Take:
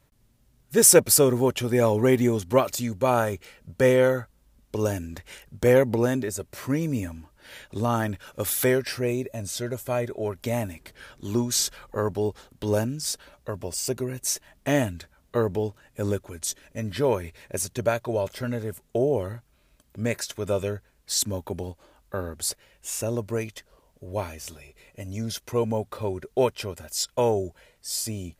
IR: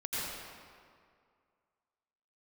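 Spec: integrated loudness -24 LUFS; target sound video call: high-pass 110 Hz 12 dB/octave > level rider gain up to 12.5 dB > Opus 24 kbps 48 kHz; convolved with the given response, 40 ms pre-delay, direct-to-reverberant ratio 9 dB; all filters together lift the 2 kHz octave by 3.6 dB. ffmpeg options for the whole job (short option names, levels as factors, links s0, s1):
-filter_complex "[0:a]equalizer=f=2000:t=o:g=4.5,asplit=2[s0][s1];[1:a]atrim=start_sample=2205,adelay=40[s2];[s1][s2]afir=irnorm=-1:irlink=0,volume=0.188[s3];[s0][s3]amix=inputs=2:normalize=0,highpass=110,dynaudnorm=m=4.22,volume=0.891" -ar 48000 -c:a libopus -b:a 24k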